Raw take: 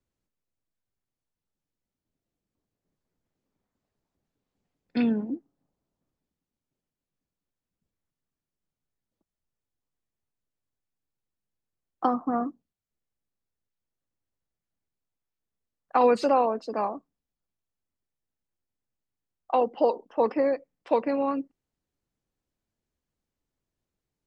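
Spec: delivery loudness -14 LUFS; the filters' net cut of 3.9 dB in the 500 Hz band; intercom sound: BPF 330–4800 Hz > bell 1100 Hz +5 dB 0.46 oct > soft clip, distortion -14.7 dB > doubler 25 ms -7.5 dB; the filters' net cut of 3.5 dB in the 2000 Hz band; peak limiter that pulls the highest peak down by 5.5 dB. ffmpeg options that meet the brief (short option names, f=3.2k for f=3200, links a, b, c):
-filter_complex "[0:a]equalizer=f=500:t=o:g=-3.5,equalizer=f=2k:t=o:g=-5.5,alimiter=limit=-17.5dB:level=0:latency=1,highpass=330,lowpass=4.8k,equalizer=f=1.1k:t=o:w=0.46:g=5,asoftclip=threshold=-22.5dB,asplit=2[a][b];[b]adelay=25,volume=-7.5dB[c];[a][c]amix=inputs=2:normalize=0,volume=18.5dB"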